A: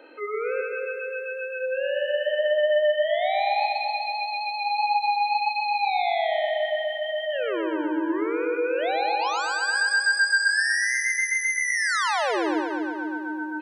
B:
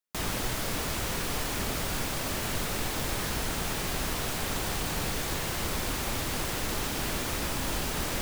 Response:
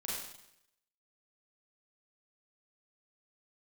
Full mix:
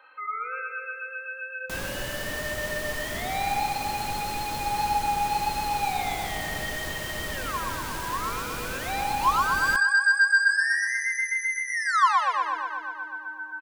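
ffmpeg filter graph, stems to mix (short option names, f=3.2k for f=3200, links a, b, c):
-filter_complex "[0:a]highpass=f=1.1k:t=q:w=6.9,aecho=1:1:3.8:0.58,volume=-8dB,asplit=2[a][b];[b]volume=-24dB[c];[1:a]adelay=1550,volume=-4dB,asplit=2[d][e];[e]volume=-20dB[f];[2:a]atrim=start_sample=2205[g];[c][f]amix=inputs=2:normalize=0[h];[h][g]afir=irnorm=-1:irlink=0[i];[a][d][i]amix=inputs=3:normalize=0"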